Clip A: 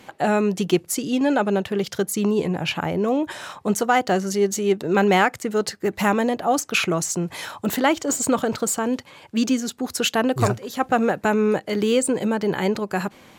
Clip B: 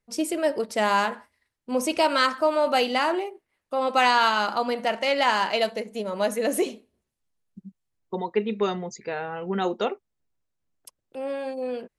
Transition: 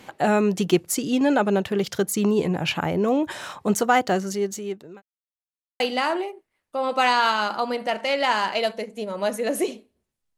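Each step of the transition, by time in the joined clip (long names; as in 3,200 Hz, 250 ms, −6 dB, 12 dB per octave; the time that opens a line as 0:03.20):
clip A
0:03.93–0:05.02: fade out linear
0:05.02–0:05.80: silence
0:05.80: continue with clip B from 0:02.78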